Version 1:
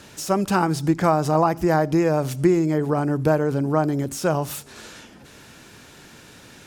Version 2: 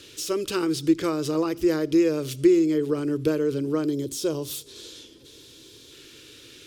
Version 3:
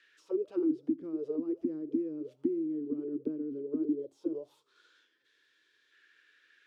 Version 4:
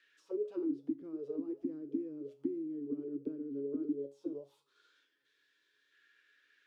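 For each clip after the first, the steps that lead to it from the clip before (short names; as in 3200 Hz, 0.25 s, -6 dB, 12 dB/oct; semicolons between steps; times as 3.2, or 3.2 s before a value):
spectral gain 3.89–5.91, 1100–3100 Hz -7 dB; EQ curve 130 Hz 0 dB, 190 Hz -12 dB, 320 Hz +8 dB, 470 Hz +6 dB, 760 Hz -16 dB, 1200 Hz -2 dB, 1700 Hz -2 dB, 3300 Hz +12 dB, 6800 Hz +5 dB; gain -6.5 dB
auto-wah 260–1900 Hz, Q 9.2, down, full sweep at -20 dBFS
resonator 140 Hz, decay 0.31 s, harmonics all, mix 70%; gain +2.5 dB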